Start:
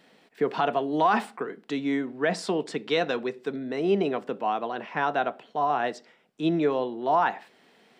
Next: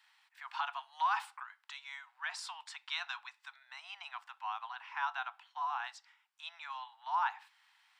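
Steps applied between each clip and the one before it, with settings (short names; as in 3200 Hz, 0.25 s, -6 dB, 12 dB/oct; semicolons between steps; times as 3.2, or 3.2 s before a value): steep high-pass 850 Hz 72 dB/oct; dynamic EQ 1900 Hz, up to -5 dB, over -49 dBFS, Q 5.1; gain -6.5 dB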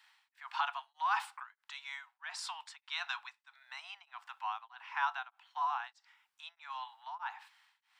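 beating tremolo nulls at 1.6 Hz; gain +3 dB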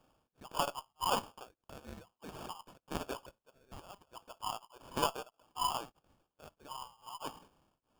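added harmonics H 2 -13 dB, 3 -25 dB, 7 -28 dB, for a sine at -20.5 dBFS; sample-rate reducer 2000 Hz, jitter 0%; gain +1.5 dB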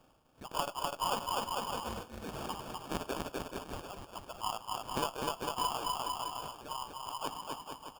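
on a send: bouncing-ball echo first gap 0.25 s, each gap 0.8×, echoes 5; on the sum: compressor 3:1, threshold -37 dBFS, peak gain reduction 9 dB; gain +5 dB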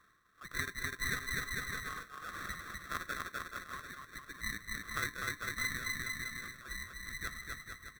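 band-swap scrambler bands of 1000 Hz; gain -2.5 dB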